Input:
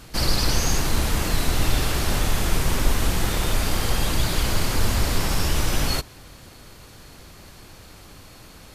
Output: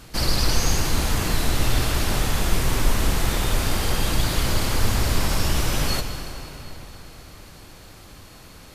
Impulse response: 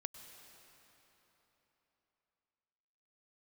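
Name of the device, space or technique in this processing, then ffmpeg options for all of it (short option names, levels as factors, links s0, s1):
cathedral: -filter_complex "[1:a]atrim=start_sample=2205[s0];[0:a][s0]afir=irnorm=-1:irlink=0,volume=1.5"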